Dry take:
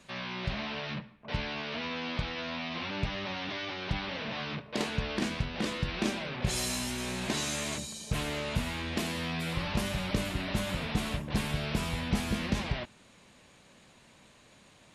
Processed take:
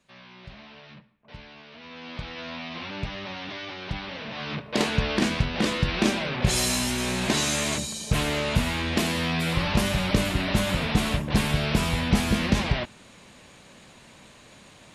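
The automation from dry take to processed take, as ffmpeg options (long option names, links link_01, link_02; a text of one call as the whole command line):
ffmpeg -i in.wav -af "volume=8dB,afade=type=in:start_time=1.78:duration=0.69:silence=0.281838,afade=type=in:start_time=4.33:duration=0.42:silence=0.421697" out.wav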